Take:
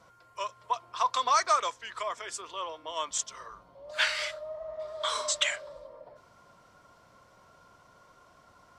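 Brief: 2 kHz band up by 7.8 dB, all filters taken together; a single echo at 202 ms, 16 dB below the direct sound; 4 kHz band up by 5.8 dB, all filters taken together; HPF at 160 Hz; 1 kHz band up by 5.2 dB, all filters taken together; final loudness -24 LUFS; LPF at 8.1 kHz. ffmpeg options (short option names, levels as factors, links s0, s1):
-af "highpass=160,lowpass=8100,equalizer=f=1000:t=o:g=3.5,equalizer=f=2000:t=o:g=7.5,equalizer=f=4000:t=o:g=4.5,aecho=1:1:202:0.158,volume=1.19"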